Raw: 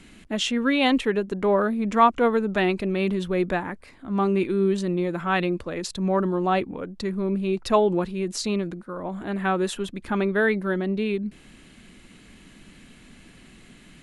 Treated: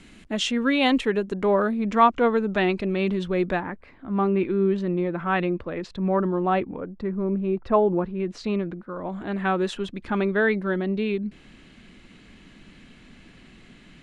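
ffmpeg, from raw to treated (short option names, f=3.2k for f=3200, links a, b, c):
-af "asetnsamples=n=441:p=0,asendcmd='1.71 lowpass f 5700;3.6 lowpass f 2500;6.77 lowpass f 1500;8.2 lowpass f 2600;8.9 lowpass f 5300',lowpass=9.2k"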